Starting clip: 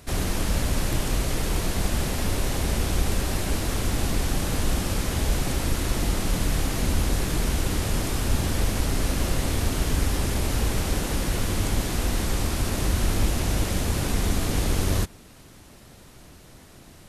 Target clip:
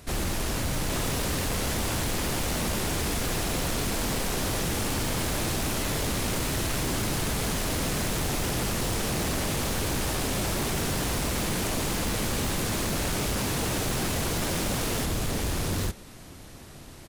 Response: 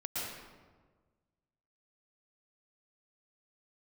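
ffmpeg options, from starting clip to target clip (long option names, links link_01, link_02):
-af "aecho=1:1:654|808|817|859:0.112|0.501|0.282|0.668,aeval=exprs='0.0708*(abs(mod(val(0)/0.0708+3,4)-2)-1)':channel_layout=same"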